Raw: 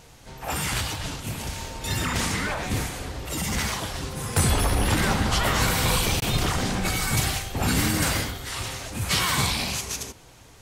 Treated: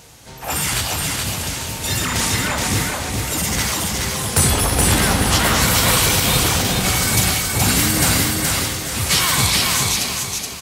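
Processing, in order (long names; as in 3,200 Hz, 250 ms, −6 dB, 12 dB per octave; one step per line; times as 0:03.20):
high-pass filter 54 Hz
high-shelf EQ 4,500 Hz +7 dB
repeating echo 423 ms, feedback 37%, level −3 dB
level +4 dB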